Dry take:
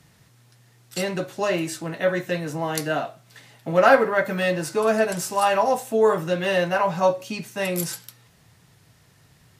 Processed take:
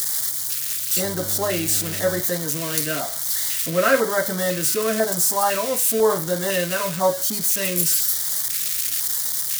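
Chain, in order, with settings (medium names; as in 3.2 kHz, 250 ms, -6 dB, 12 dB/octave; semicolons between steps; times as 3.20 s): zero-crossing glitches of -14.5 dBFS; LFO notch square 1 Hz 820–2600 Hz; 1.03–2.20 s: mains buzz 100 Hz, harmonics 8, -36 dBFS -6 dB/octave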